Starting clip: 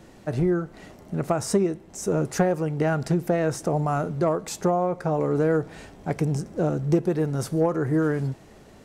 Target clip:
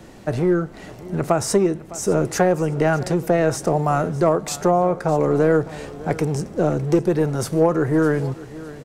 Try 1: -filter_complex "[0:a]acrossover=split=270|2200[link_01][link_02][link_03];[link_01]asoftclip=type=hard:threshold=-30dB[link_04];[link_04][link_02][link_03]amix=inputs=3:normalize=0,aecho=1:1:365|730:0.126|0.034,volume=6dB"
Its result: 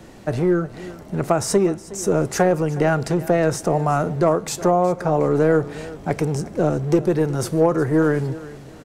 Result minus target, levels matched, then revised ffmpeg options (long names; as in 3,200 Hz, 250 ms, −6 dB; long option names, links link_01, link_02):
echo 243 ms early
-filter_complex "[0:a]acrossover=split=270|2200[link_01][link_02][link_03];[link_01]asoftclip=type=hard:threshold=-30dB[link_04];[link_04][link_02][link_03]amix=inputs=3:normalize=0,aecho=1:1:608|1216:0.126|0.034,volume=6dB"